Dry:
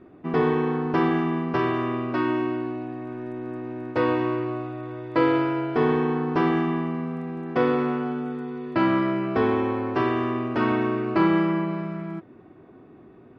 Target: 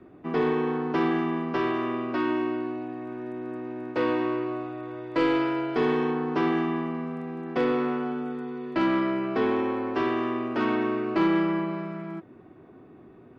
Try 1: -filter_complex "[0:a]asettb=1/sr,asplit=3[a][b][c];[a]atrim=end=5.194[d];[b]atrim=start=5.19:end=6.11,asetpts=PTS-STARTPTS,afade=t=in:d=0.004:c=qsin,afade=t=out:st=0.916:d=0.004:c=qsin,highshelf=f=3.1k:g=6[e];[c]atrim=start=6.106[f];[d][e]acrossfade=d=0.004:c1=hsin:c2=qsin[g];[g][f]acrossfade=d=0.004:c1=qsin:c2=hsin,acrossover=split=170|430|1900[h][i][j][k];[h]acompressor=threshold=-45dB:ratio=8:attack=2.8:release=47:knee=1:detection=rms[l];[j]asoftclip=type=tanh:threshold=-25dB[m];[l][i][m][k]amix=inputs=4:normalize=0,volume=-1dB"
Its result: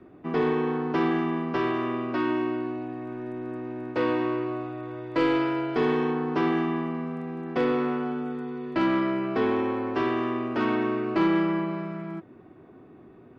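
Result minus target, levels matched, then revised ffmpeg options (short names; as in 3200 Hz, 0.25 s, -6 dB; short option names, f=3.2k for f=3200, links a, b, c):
compressor: peak gain reduction -7 dB
-filter_complex "[0:a]asettb=1/sr,asplit=3[a][b][c];[a]atrim=end=5.194[d];[b]atrim=start=5.19:end=6.11,asetpts=PTS-STARTPTS,afade=t=in:d=0.004:c=qsin,afade=t=out:st=0.916:d=0.004:c=qsin,highshelf=f=3.1k:g=6[e];[c]atrim=start=6.106[f];[d][e]acrossfade=d=0.004:c1=hsin:c2=qsin[g];[g][f]acrossfade=d=0.004:c1=qsin:c2=hsin,acrossover=split=170|430|1900[h][i][j][k];[h]acompressor=threshold=-53dB:ratio=8:attack=2.8:release=47:knee=1:detection=rms[l];[j]asoftclip=type=tanh:threshold=-25dB[m];[l][i][m][k]amix=inputs=4:normalize=0,volume=-1dB"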